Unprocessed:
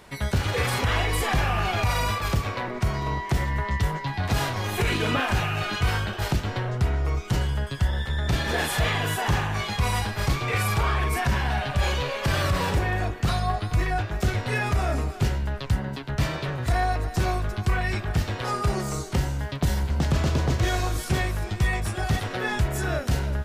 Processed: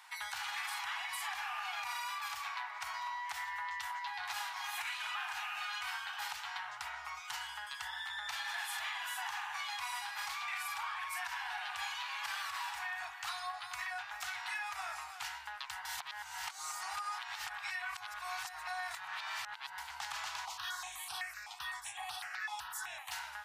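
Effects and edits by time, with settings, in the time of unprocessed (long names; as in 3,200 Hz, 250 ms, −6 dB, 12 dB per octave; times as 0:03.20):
0:15.85–0:19.78: reverse
0:20.45–0:23.12: step-sequenced phaser 7.9 Hz 450–7,000 Hz
whole clip: elliptic high-pass filter 820 Hz, stop band 40 dB; downward compressor, threshold −33 dBFS; level −4 dB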